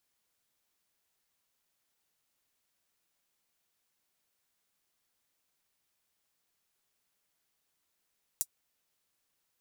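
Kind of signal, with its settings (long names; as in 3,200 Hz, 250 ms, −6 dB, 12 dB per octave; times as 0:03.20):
closed synth hi-hat, high-pass 7,300 Hz, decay 0.06 s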